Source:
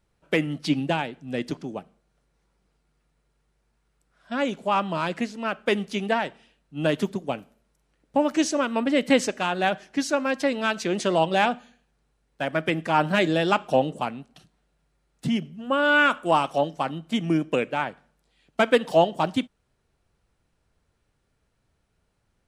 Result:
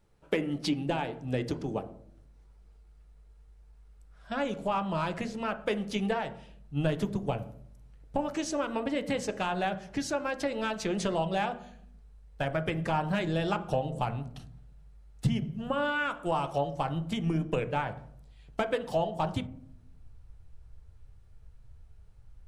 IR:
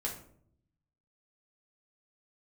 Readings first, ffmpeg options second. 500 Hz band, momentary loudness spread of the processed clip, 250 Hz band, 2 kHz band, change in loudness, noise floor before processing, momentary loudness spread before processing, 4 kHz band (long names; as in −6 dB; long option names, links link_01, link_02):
−7.5 dB, 8 LU, −6.5 dB, −10.0 dB, −7.0 dB, −72 dBFS, 11 LU, −8.5 dB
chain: -filter_complex "[0:a]acompressor=threshold=-29dB:ratio=4,asubboost=boost=10:cutoff=84,asplit=2[link_01][link_02];[link_02]lowpass=1300[link_03];[1:a]atrim=start_sample=2205[link_04];[link_03][link_04]afir=irnorm=-1:irlink=0,volume=-4.5dB[link_05];[link_01][link_05]amix=inputs=2:normalize=0"